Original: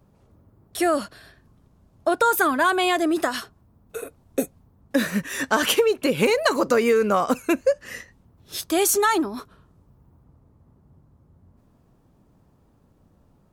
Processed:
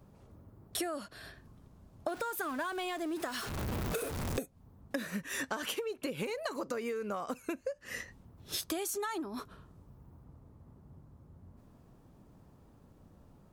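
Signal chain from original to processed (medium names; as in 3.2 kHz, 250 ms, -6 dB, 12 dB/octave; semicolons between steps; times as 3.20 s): 2.08–4.39 s: jump at every zero crossing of -28.5 dBFS; compression 20:1, threshold -33 dBFS, peak gain reduction 20 dB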